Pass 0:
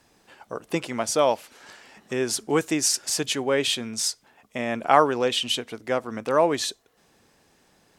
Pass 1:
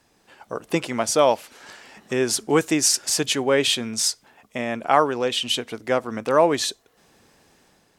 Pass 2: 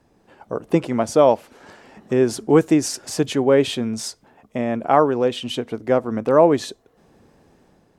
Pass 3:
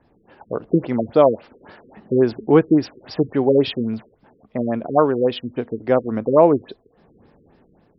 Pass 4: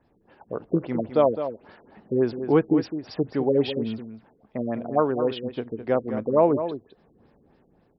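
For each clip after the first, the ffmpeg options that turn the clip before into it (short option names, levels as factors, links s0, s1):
-af "dynaudnorm=f=160:g=5:m=1.88,volume=0.841"
-af "tiltshelf=f=1200:g=8,volume=0.891"
-af "afftfilt=real='re*lt(b*sr/1024,480*pow(5700/480,0.5+0.5*sin(2*PI*3.6*pts/sr)))':imag='im*lt(b*sr/1024,480*pow(5700/480,0.5+0.5*sin(2*PI*3.6*pts/sr)))':win_size=1024:overlap=0.75,volume=1.12"
-filter_complex "[0:a]asplit=2[s0][s1];[s1]adelay=209.9,volume=0.316,highshelf=f=4000:g=-4.72[s2];[s0][s2]amix=inputs=2:normalize=0,volume=0.501"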